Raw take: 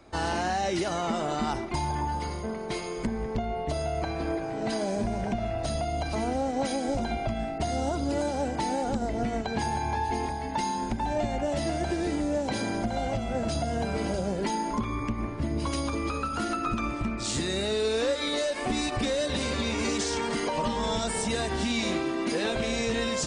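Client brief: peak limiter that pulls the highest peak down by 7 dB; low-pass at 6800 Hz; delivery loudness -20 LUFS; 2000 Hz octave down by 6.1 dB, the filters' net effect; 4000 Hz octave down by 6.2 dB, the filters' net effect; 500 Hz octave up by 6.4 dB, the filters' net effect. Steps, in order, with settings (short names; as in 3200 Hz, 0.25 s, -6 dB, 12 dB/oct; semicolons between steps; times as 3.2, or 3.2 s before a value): LPF 6800 Hz; bell 500 Hz +8.5 dB; bell 2000 Hz -7 dB; bell 4000 Hz -5 dB; gain +8.5 dB; limiter -11 dBFS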